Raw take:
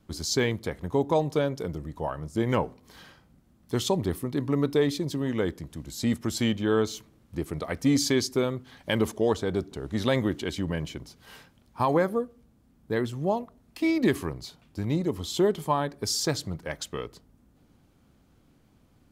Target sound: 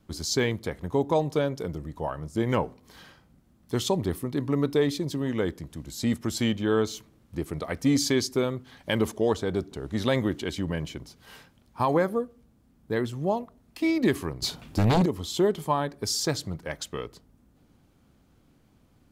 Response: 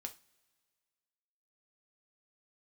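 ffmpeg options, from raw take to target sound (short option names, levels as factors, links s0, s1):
-filter_complex "[0:a]asettb=1/sr,asplit=3[s0][s1][s2];[s0]atrim=end=14.424[s3];[s1]atrim=start=14.42:end=15.06,asetpts=PTS-STARTPTS,afade=t=in:d=0.004:c=qsin,afade=t=out:st=0.636:d=0.004:c=qsin,aeval=exprs='0.15*sin(PI/2*2.82*val(0)/0.15)':c=same[s4];[s2]atrim=start=15.056[s5];[s3][s4]acrossfade=d=0.004:c1=hsin:c2=qsin[s6];[s6][s5]acrossfade=d=0.004:c1=qsin:c2=hsin"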